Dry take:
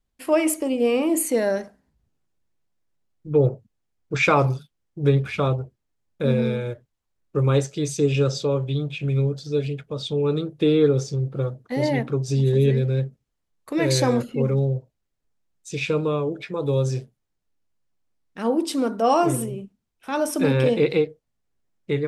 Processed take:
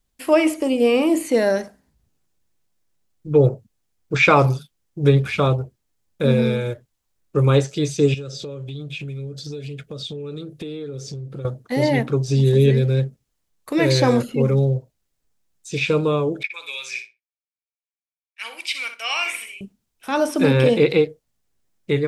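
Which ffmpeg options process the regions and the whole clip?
ffmpeg -i in.wav -filter_complex "[0:a]asettb=1/sr,asplit=3[link_01][link_02][link_03];[link_01]atrim=end=8.144[link_04];[link_02]atrim=start=8.14:end=11.45,asetpts=PTS-STARTPTS,afade=type=in:duration=0.004:curve=qsin,afade=type=out:start_time=3.306:duration=0.004:curve=qsin,equalizer=frequency=920:width=2.5:gain=-11,acompressor=threshold=-32dB:ratio=10:attack=3.2:release=140:knee=1:detection=peak[link_05];[link_03]atrim=start=11.446[link_06];[link_04][link_05]acrossfade=duration=0.004:curve1=hsin:curve2=qsin[link_07];[link_07][link_06]acrossfade=duration=0.004:curve1=qsin:curve2=hsin,asettb=1/sr,asplit=3[link_08][link_09][link_10];[link_08]atrim=end=16.434[link_11];[link_09]atrim=start=16.43:end=19.61,asetpts=PTS-STARTPTS,afade=type=in:duration=0.004:curve=qsin,afade=type=out:start_time=3.176:duration=0.004:curve=qsin,agate=range=-33dB:threshold=-28dB:ratio=3:release=100:detection=peak,highpass=frequency=2300:width_type=q:width=15,asplit=2[link_12][link_13];[link_13]adelay=61,lowpass=frequency=3100:poles=1,volume=-8dB,asplit=2[link_14][link_15];[link_15]adelay=61,lowpass=frequency=3100:poles=1,volume=0.19,asplit=2[link_16][link_17];[link_17]adelay=61,lowpass=frequency=3100:poles=1,volume=0.19[link_18];[link_12][link_14][link_16][link_18]amix=inputs=4:normalize=0,atrim=end_sample=140238[link_19];[link_10]atrim=start=19.606[link_20];[link_11][link_19]acrossfade=duration=0.004:curve1=hsin:curve2=qsin[link_21];[link_21][link_20]acrossfade=duration=0.004:curve1=qsin:curve2=hsin,acrossover=split=4300[link_22][link_23];[link_23]acompressor=threshold=-48dB:ratio=4:attack=1:release=60[link_24];[link_22][link_24]amix=inputs=2:normalize=0,highshelf=frequency=3900:gain=8,volume=3.5dB" out.wav

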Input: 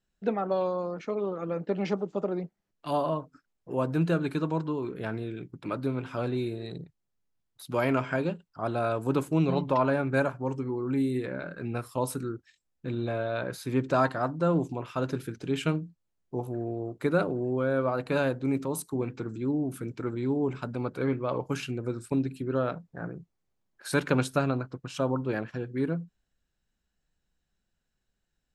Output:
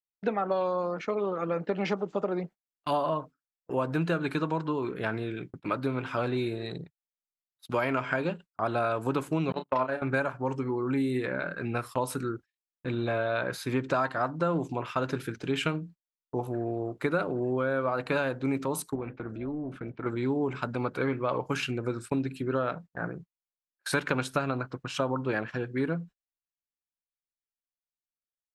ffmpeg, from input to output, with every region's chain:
ffmpeg -i in.wav -filter_complex "[0:a]asettb=1/sr,asplit=3[link_01][link_02][link_03];[link_01]atrim=end=9.524[link_04];[link_02]atrim=start=9.52:end=10.02,asetpts=PTS-STARTPTS,afade=type=in:duration=0.004:curve=qsin,afade=type=out:start_time=0.496:duration=0.004:curve=qsin,agate=range=-46dB:threshold=-25dB:ratio=16:release=100:detection=peak,highpass=130,asplit=2[link_05][link_06];[link_06]adelay=31,volume=-9dB[link_07];[link_05][link_07]amix=inputs=2:normalize=0,atrim=end_sample=22050[link_08];[link_03]atrim=start=10.016[link_09];[link_04][link_08]acrossfade=duration=0.004:curve1=hsin:curve2=qsin[link_10];[link_10][link_09]acrossfade=duration=0.004:curve1=qsin:curve2=hsin,asettb=1/sr,asplit=3[link_11][link_12][link_13];[link_11]atrim=end=18.954[link_14];[link_12]atrim=start=18.95:end=20.06,asetpts=PTS-STARTPTS,afade=type=in:duration=0.004:curve=qsin,afade=type=out:start_time=1.106:duration=0.004:curve=qsin,lowpass=2600,acompressor=threshold=-32dB:ratio=3:attack=3.2:release=140:knee=1:detection=peak,tremolo=f=300:d=0.333[link_15];[link_13]atrim=start=20.056[link_16];[link_14][link_15]acrossfade=duration=0.004:curve1=hsin:curve2=qsin[link_17];[link_17][link_16]acrossfade=duration=0.004:curve1=qsin:curve2=hsin,agate=range=-34dB:threshold=-44dB:ratio=16:detection=peak,equalizer=frequency=1700:width=0.4:gain=7.5,acompressor=threshold=-24dB:ratio=5" out.wav

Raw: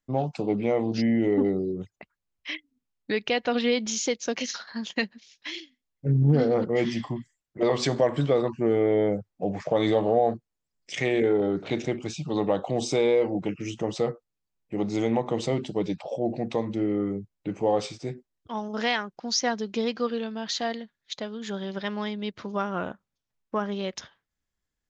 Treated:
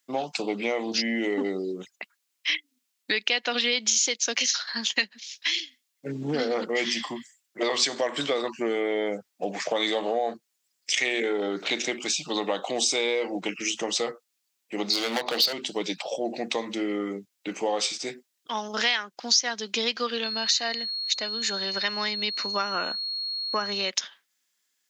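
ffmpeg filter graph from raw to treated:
ffmpeg -i in.wav -filter_complex "[0:a]asettb=1/sr,asplit=3[link_01][link_02][link_03];[link_01]atrim=end=14.904[link_04];[link_02]atrim=start=14.9:end=15.53,asetpts=PTS-STARTPTS,afade=type=in:duration=0.004:curve=qsin,afade=type=out:start_time=0.626:duration=0.004:curve=qsin,lowpass=frequency=4500:width_type=q:width=12,equalizer=frequency=650:width=1.8:gain=7.5,asoftclip=type=hard:threshold=-21dB[link_05];[link_03]atrim=start=15.526[link_06];[link_04][link_05]acrossfade=duration=0.004:curve1=hsin:curve2=qsin[link_07];[link_07][link_06]acrossfade=duration=0.004:curve1=qsin:curve2=hsin,asettb=1/sr,asplit=3[link_08][link_09][link_10];[link_08]atrim=end=20.244[link_11];[link_09]atrim=start=20.24:end=23.9,asetpts=PTS-STARTPTS,afade=type=in:duration=0.004:curve=qsin,afade=type=out:start_time=3.656:duration=0.004:curve=qsin,aeval=exprs='val(0)+0.00631*sin(2*PI*4300*n/s)':channel_layout=same,asuperstop=centerf=3300:order=4:qfactor=6.6[link_12];[link_10]atrim=start=23.896[link_13];[link_11][link_12]acrossfade=duration=0.004:curve1=hsin:curve2=qsin[link_14];[link_14][link_13]acrossfade=duration=0.004:curve1=qsin:curve2=hsin,highpass=frequency=210:width=0.5412,highpass=frequency=210:width=1.3066,tiltshelf=frequency=1300:gain=-10,acompressor=threshold=-32dB:ratio=2.5,volume=7.5dB" out.wav

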